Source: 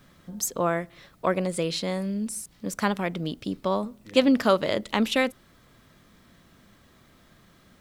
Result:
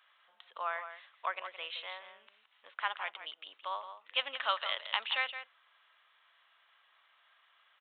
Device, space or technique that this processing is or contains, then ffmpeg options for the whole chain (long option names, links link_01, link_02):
musical greeting card: -filter_complex "[0:a]asettb=1/sr,asplit=3[link_01][link_02][link_03];[link_01]atrim=end=4.394[link_04];[link_02]atrim=start=4.39:end=4.98,asetpts=PTS-STARTPTS,afade=type=in:duration=0.004:curve=qsin,afade=type=out:start_time=0.586:duration=0.004:curve=qsin,bass=frequency=250:gain=-10,treble=frequency=4000:gain=12[link_05];[link_03]atrim=start=4.976[link_06];[link_04][link_05]acrossfade=duration=0.004:curve1=hsin:curve2=qsin[link_07];[link_07][link_06]acrossfade=duration=0.004:curve1=qsin:curve2=hsin,aresample=8000,aresample=44100,highpass=frequency=870:width=0.5412,highpass=frequency=870:width=1.3066,equalizer=frequency=2900:width_type=o:width=0.27:gain=5,asplit=2[link_08][link_09];[link_09]adelay=169.1,volume=-10dB,highshelf=frequency=4000:gain=-3.8[link_10];[link_08][link_10]amix=inputs=2:normalize=0,volume=-5.5dB"